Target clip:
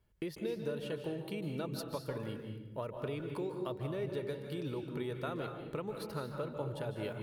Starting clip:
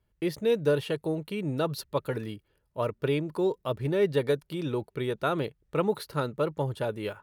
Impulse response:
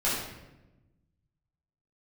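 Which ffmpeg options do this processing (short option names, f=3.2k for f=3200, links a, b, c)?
-filter_complex "[0:a]acompressor=threshold=-38dB:ratio=5,asplit=2[a][b];[1:a]atrim=start_sample=2205,adelay=144[c];[b][c]afir=irnorm=-1:irlink=0,volume=-15dB[d];[a][d]amix=inputs=2:normalize=0"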